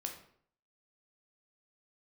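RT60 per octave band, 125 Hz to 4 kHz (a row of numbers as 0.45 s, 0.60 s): 0.65 s, 0.60 s, 0.60 s, 0.60 s, 0.50 s, 0.45 s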